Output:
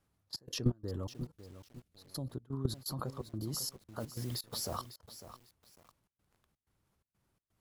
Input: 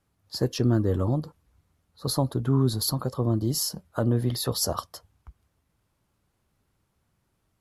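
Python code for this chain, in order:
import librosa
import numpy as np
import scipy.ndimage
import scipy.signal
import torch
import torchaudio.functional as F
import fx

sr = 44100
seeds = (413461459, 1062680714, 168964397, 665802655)

y = fx.peak_eq(x, sr, hz=1000.0, db=-13.0, octaves=1.3, at=(1.25, 2.3))
y = fx.level_steps(y, sr, step_db=20)
y = fx.dmg_noise_colour(y, sr, seeds[0], colour='white', level_db=-57.0, at=(3.99, 4.76), fade=0.02)
y = fx.step_gate(y, sr, bpm=126, pattern='xxx.xx.xx.xxx.', floor_db=-24.0, edge_ms=4.5)
y = fx.echo_crushed(y, sr, ms=551, feedback_pct=35, bits=9, wet_db=-12.0)
y = y * 10.0 ** (2.0 / 20.0)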